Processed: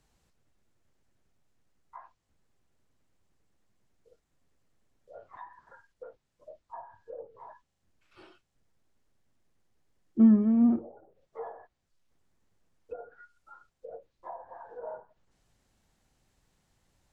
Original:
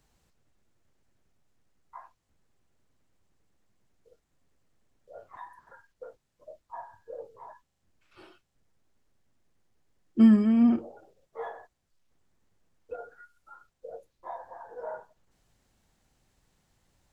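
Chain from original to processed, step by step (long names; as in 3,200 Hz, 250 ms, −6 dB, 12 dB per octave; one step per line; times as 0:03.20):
treble cut that deepens with the level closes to 980 Hz, closed at −36.5 dBFS
level −1.5 dB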